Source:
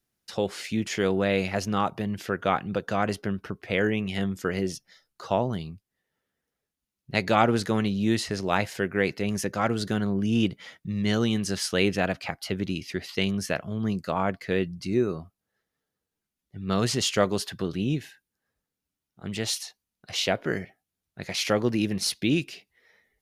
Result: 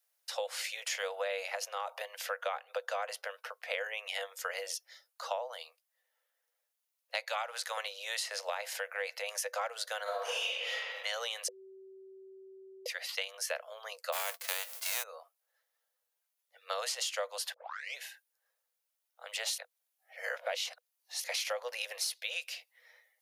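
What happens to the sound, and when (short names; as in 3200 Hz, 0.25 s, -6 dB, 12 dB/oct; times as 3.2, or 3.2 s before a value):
1.55–2 compressor, threshold -27 dBFS
7.24–7.77 Bessel high-pass 870 Hz
8.49–9.26 compressor 2:1, threshold -26 dBFS
10.03–10.73 reverb throw, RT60 1.5 s, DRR -11.5 dB
11.48–12.86 bleep 383 Hz -11 dBFS
14.12–15.02 spectral whitening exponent 0.3
17.54 tape start 0.44 s
19.58–21.24 reverse
whole clip: Chebyshev high-pass 490 Hz, order 8; high shelf 10000 Hz +10 dB; compressor 10:1, threshold -32 dBFS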